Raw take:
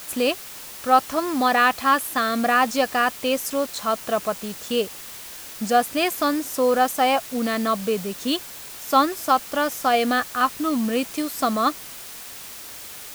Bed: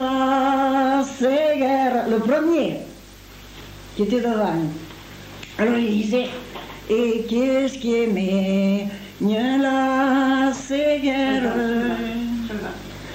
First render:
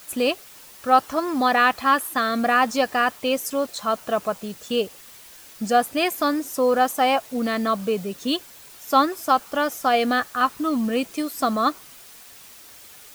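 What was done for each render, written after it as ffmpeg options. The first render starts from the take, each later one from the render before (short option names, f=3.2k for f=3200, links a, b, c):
-af "afftdn=nr=8:nf=-38"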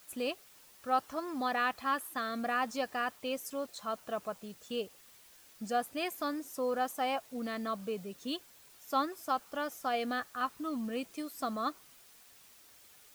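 -af "volume=-13.5dB"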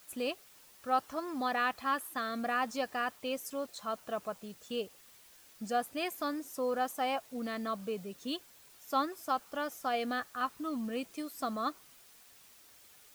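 -af anull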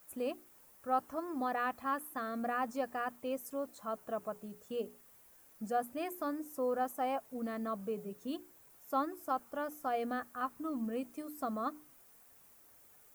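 -af "equalizer=f=3.9k:t=o:w=2:g=-14,bandreject=f=60:t=h:w=6,bandreject=f=120:t=h:w=6,bandreject=f=180:t=h:w=6,bandreject=f=240:t=h:w=6,bandreject=f=300:t=h:w=6,bandreject=f=360:t=h:w=6,bandreject=f=420:t=h:w=6"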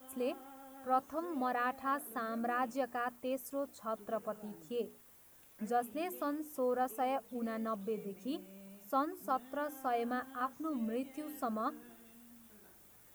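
-filter_complex "[1:a]volume=-35.5dB[a];[0:a][a]amix=inputs=2:normalize=0"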